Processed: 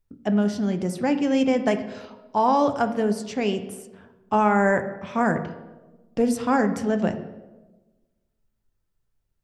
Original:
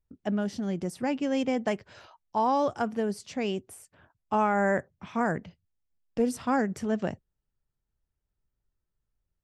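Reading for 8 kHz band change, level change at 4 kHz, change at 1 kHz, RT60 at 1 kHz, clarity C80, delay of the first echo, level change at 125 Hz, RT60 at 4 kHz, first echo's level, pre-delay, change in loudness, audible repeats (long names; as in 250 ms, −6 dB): +5.0 dB, +5.5 dB, +5.5 dB, 1.0 s, 13.0 dB, no echo audible, +6.5 dB, 0.70 s, no echo audible, 3 ms, +6.0 dB, no echo audible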